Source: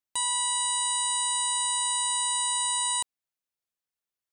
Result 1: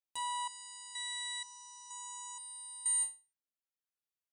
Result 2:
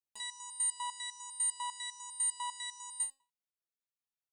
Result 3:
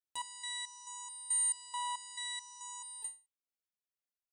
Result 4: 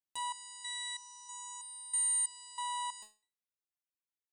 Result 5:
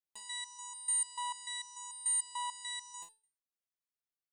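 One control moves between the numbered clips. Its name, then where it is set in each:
resonator arpeggio, rate: 2.1 Hz, 10 Hz, 4.6 Hz, 3.1 Hz, 6.8 Hz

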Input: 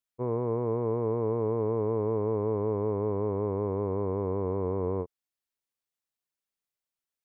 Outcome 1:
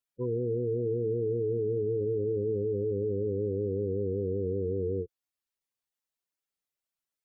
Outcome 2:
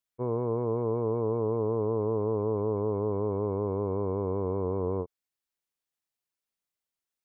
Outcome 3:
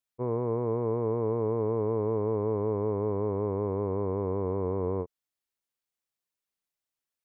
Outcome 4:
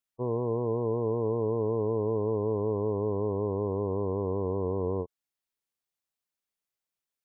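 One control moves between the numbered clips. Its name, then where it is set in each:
spectral gate, under each frame's peak: -10 dB, -45 dB, -60 dB, -25 dB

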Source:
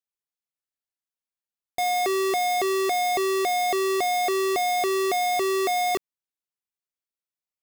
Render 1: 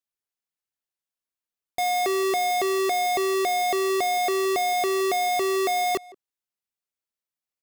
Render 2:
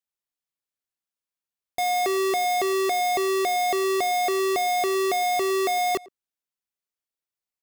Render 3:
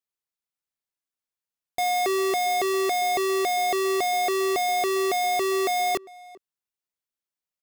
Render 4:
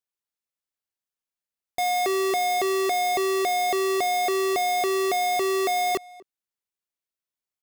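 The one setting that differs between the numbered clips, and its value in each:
speakerphone echo, time: 170 ms, 110 ms, 400 ms, 250 ms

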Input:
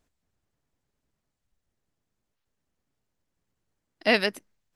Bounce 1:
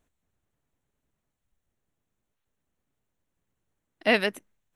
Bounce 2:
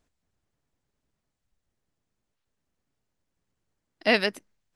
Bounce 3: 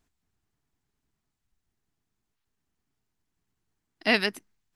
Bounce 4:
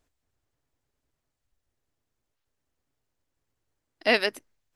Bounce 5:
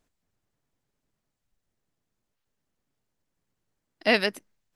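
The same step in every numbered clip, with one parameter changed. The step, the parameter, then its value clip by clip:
peaking EQ, frequency: 4.9 kHz, 14 kHz, 550 Hz, 190 Hz, 65 Hz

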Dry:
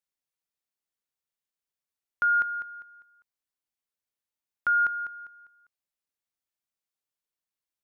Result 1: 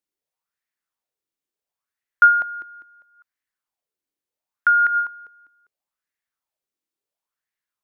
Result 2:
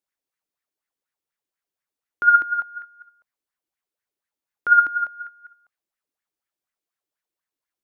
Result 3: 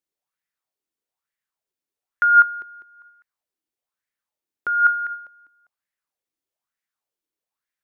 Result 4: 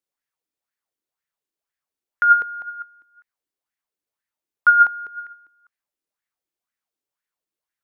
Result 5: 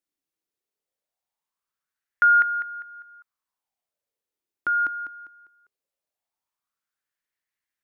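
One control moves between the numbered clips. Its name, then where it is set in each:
sweeping bell, rate: 0.73 Hz, 4.1 Hz, 1.1 Hz, 2 Hz, 0.2 Hz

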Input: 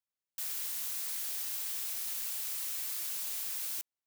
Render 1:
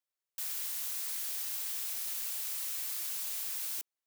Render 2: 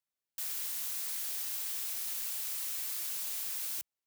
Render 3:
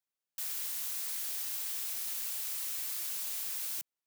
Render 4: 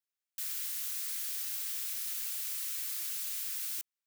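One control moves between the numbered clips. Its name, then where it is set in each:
high-pass, cutoff frequency: 360 Hz, 47 Hz, 130 Hz, 1.2 kHz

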